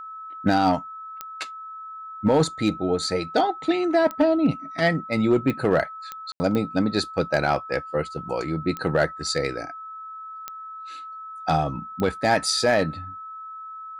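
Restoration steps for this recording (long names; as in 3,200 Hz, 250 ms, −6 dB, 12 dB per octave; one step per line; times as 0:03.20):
clipped peaks rebuilt −11.5 dBFS
click removal
notch filter 1,300 Hz, Q 30
ambience match 0:06.32–0:06.40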